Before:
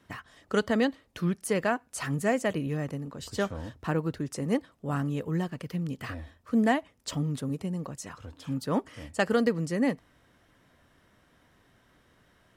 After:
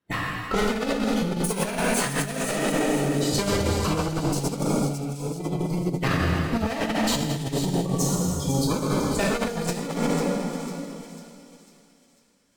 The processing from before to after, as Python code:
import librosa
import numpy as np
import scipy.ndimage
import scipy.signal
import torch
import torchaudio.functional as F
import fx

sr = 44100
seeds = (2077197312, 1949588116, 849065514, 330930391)

p1 = fx.level_steps(x, sr, step_db=20)
p2 = x + (p1 * librosa.db_to_amplitude(-3.0))
p3 = fx.tube_stage(p2, sr, drive_db=28.0, bias=0.75)
p4 = fx.clip_asym(p3, sr, top_db=-40.5, bottom_db=-27.5)
p5 = fx.cheby1_highpass(p4, sr, hz=290.0, order=6, at=(2.52, 2.98))
p6 = fx.noise_reduce_blind(p5, sr, reduce_db=27)
p7 = fx.rev_plate(p6, sr, seeds[0], rt60_s=2.9, hf_ratio=0.9, predelay_ms=0, drr_db=-6.0)
p8 = fx.over_compress(p7, sr, threshold_db=-33.0, ratio=-0.5)
p9 = p8 + fx.echo_wet_highpass(p8, sr, ms=498, feedback_pct=47, hz=3600.0, wet_db=-7, dry=0)
y = p9 * librosa.db_to_amplitude(9.0)